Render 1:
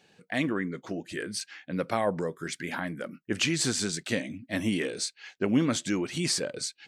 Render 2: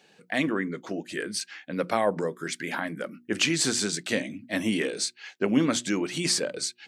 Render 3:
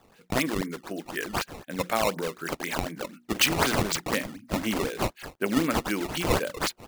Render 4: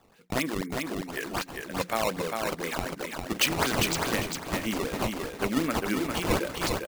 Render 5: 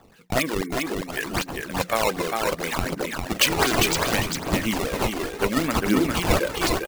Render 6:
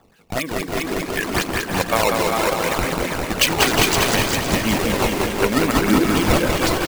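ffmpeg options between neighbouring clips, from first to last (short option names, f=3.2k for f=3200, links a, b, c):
-af "highpass=170,bandreject=f=60:t=h:w=6,bandreject=f=120:t=h:w=6,bandreject=f=180:t=h:w=6,bandreject=f=240:t=h:w=6,bandreject=f=300:t=h:w=6,bandreject=f=360:t=h:w=6,volume=3dB"
-af "tiltshelf=f=970:g=-3.5,acrusher=samples=16:mix=1:aa=0.000001:lfo=1:lforange=25.6:lforate=4"
-af "aecho=1:1:401|802|1203|1604:0.631|0.164|0.0427|0.0111,volume=-2.5dB"
-af "aphaser=in_gain=1:out_gain=1:delay=3:decay=0.4:speed=0.67:type=triangular,volume=5dB"
-filter_complex "[0:a]dynaudnorm=f=620:g=3:m=11.5dB,asplit=2[a][b];[b]aecho=0:1:190|361|514.9|653.4|778.1:0.631|0.398|0.251|0.158|0.1[c];[a][c]amix=inputs=2:normalize=0,volume=-2dB"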